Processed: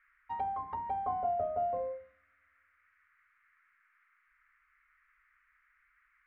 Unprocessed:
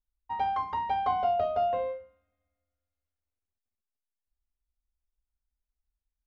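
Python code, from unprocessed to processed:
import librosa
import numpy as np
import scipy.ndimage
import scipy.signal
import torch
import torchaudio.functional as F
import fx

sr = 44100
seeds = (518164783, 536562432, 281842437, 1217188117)

y = fx.env_lowpass_down(x, sr, base_hz=890.0, full_db=-28.0)
y = fx.dmg_noise_band(y, sr, seeds[0], low_hz=1200.0, high_hz=2200.0, level_db=-67.0)
y = y * librosa.db_to_amplitude(-4.0)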